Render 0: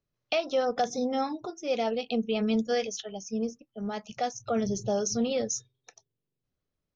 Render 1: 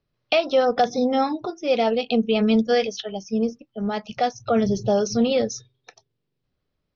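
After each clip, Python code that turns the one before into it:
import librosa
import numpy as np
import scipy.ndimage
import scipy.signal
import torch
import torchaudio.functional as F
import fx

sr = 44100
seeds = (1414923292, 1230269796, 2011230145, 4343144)

y = scipy.signal.sosfilt(scipy.signal.butter(6, 5200.0, 'lowpass', fs=sr, output='sos'), x)
y = F.gain(torch.from_numpy(y), 8.0).numpy()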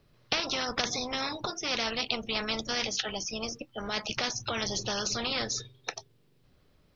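y = fx.spectral_comp(x, sr, ratio=4.0)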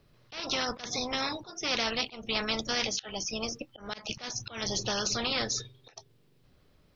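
y = fx.auto_swell(x, sr, attack_ms=204.0)
y = F.gain(torch.from_numpy(y), 1.0).numpy()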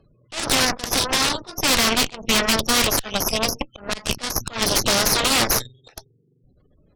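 y = fx.spec_gate(x, sr, threshold_db=-20, keep='strong')
y = fx.cheby_harmonics(y, sr, harmonics=(8,), levels_db=(-7,), full_scale_db=-15.0)
y = F.gain(torch.from_numpy(y), 7.0).numpy()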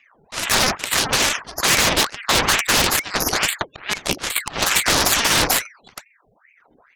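y = fx.ring_lfo(x, sr, carrier_hz=1300.0, swing_pct=80, hz=2.3)
y = F.gain(torch.from_numpy(y), 4.5).numpy()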